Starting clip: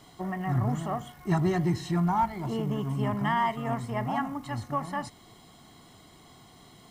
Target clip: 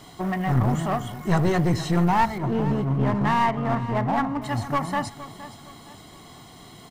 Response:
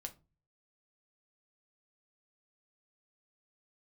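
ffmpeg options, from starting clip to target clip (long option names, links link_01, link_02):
-filter_complex "[0:a]asettb=1/sr,asplit=3[link_01][link_02][link_03];[link_01]atrim=end=2.384[link_04];[link_02]atrim=start=2.38:end=4.42,asetpts=PTS-STARTPTS,afade=type=in:duration=0.004:curve=qsin,afade=type=out:start_time=2.036:duration=0.004:curve=qsin,lowpass=1800[link_05];[link_03]atrim=start=4.416[link_06];[link_04][link_05]acrossfade=duration=0.004:curve1=hsin:curve2=qsin[link_07];[link_07][link_06]acrossfade=duration=0.004:curve1=qsin:curve2=hsin,aeval=exprs='clip(val(0),-1,0.0335)':channel_layout=same,aecho=1:1:466|932|1398:0.178|0.064|0.023,volume=7.5dB"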